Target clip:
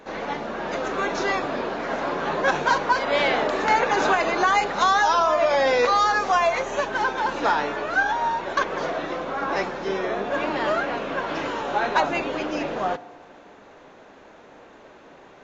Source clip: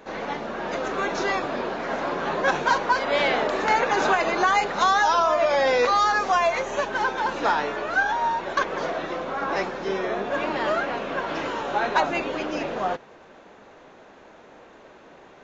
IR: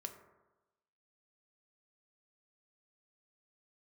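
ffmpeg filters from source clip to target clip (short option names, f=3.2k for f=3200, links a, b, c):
-filter_complex "[0:a]asplit=2[a][b];[1:a]atrim=start_sample=2205,asetrate=32193,aresample=44100[c];[b][c]afir=irnorm=-1:irlink=0,volume=-8dB[d];[a][d]amix=inputs=2:normalize=0,volume=-1.5dB"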